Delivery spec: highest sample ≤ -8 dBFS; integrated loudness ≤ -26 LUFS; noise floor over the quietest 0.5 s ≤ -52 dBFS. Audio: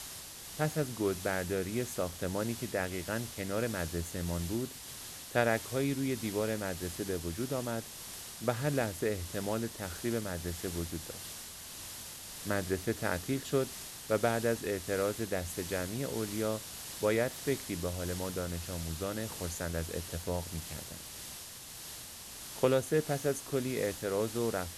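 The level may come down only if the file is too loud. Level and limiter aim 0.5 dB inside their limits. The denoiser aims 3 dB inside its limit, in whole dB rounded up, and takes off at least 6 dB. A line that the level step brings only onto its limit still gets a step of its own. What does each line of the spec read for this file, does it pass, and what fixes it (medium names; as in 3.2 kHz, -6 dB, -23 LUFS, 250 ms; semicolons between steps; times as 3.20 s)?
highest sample -12.5 dBFS: pass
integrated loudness -35.0 LUFS: pass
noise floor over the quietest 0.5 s -47 dBFS: fail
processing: noise reduction 8 dB, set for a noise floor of -47 dBFS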